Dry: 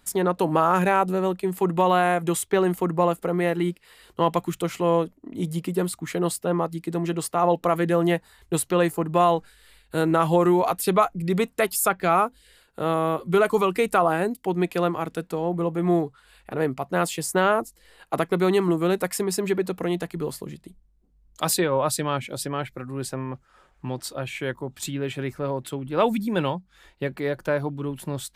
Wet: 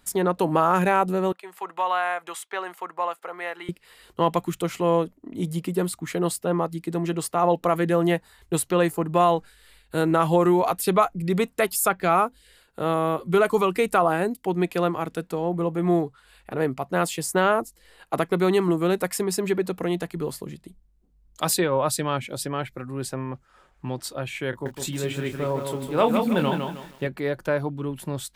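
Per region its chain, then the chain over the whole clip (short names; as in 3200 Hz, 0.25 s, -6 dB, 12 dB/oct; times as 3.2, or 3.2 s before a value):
1.32–3.69 Chebyshev high-pass 1000 Hz + high shelf 5200 Hz -11 dB
24.5–27.07 doubler 27 ms -7.5 dB + lo-fi delay 0.157 s, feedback 35%, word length 8-bit, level -5 dB
whole clip: dry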